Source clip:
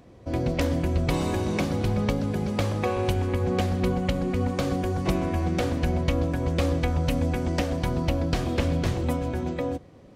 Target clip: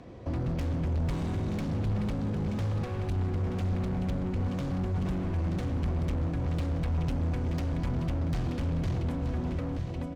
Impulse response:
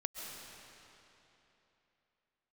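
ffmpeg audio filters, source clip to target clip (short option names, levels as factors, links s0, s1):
-filter_complex "[0:a]adynamicsmooth=sensitivity=6:basefreq=6300,aecho=1:1:928|1856|2784|3712:0.282|0.11|0.0429|0.0167,volume=28.2,asoftclip=hard,volume=0.0355,acrossover=split=220[s0][s1];[s1]acompressor=threshold=0.00708:ratio=6[s2];[s0][s2]amix=inputs=2:normalize=0,volume=1.58"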